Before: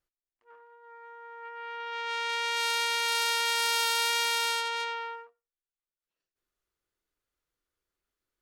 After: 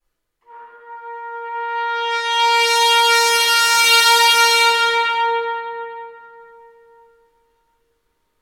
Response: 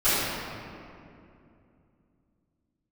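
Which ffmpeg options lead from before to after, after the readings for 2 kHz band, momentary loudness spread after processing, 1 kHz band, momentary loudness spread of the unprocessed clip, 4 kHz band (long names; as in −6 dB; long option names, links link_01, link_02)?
+14.0 dB, 19 LU, +16.5 dB, 18 LU, +14.0 dB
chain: -filter_complex "[1:a]atrim=start_sample=2205,asetrate=33516,aresample=44100[link_01];[0:a][link_01]afir=irnorm=-1:irlink=0,volume=-2dB"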